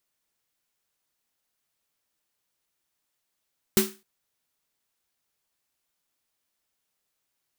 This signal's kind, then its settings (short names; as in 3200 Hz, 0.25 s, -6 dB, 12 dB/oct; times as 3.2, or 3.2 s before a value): snare drum length 0.26 s, tones 210 Hz, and 380 Hz, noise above 900 Hz, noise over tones -2.5 dB, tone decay 0.27 s, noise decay 0.30 s